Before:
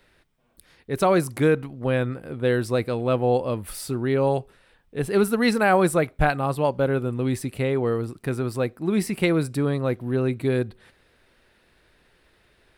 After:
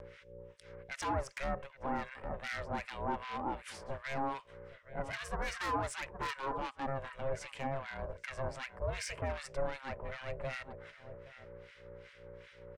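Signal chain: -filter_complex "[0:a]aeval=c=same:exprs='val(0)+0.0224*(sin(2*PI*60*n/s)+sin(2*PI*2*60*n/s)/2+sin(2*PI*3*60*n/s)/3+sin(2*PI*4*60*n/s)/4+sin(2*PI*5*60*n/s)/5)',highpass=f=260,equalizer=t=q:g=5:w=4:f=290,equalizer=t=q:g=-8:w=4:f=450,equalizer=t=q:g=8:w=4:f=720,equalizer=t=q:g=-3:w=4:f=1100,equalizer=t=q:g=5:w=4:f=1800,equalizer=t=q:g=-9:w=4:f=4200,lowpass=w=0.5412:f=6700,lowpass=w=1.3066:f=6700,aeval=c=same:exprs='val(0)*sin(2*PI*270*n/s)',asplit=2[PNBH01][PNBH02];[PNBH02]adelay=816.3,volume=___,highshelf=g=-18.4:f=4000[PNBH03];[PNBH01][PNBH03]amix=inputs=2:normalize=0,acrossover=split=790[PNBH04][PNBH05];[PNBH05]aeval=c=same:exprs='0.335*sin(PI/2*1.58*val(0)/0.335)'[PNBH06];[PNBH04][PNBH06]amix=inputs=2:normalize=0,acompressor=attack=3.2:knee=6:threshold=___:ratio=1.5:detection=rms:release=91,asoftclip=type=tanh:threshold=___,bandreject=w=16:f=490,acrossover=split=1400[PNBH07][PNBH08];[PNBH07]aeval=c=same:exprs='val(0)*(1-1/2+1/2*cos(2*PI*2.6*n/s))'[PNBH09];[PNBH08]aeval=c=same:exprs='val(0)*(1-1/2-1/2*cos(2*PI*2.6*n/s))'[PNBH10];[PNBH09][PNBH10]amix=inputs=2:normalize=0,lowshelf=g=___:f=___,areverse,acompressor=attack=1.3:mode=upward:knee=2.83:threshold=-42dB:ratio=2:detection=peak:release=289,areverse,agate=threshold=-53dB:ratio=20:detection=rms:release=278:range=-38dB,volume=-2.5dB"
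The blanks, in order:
-19dB, -29dB, -25dB, 3.5, 360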